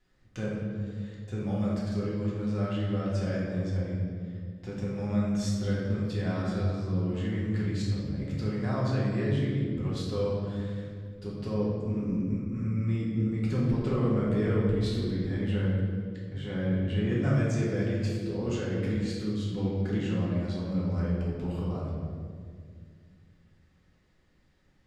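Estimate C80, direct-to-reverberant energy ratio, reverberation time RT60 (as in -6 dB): 2.0 dB, -7.5 dB, 2.1 s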